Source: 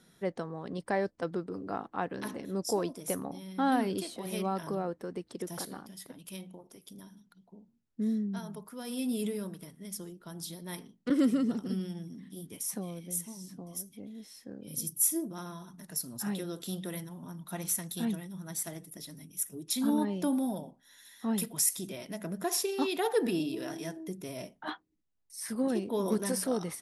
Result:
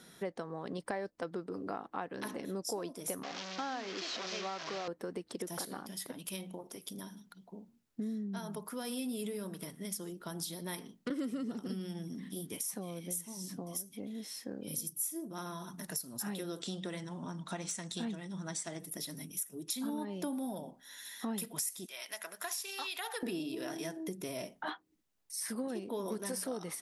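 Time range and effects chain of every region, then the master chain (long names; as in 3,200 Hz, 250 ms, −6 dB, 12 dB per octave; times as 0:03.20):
0:03.23–0:04.88: linear delta modulator 32 kbit/s, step −32.5 dBFS + high-pass filter 610 Hz 6 dB per octave + notch filter 890 Hz
0:16.60–0:18.80: Butterworth low-pass 8,700 Hz 48 dB per octave + gain into a clipping stage and back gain 25.5 dB
0:21.86–0:23.23: high-pass filter 1,200 Hz + downward compressor 2 to 1, threshold −37 dBFS
whole clip: low-shelf EQ 160 Hz −10 dB; downward compressor 4 to 1, threshold −45 dBFS; level +7.5 dB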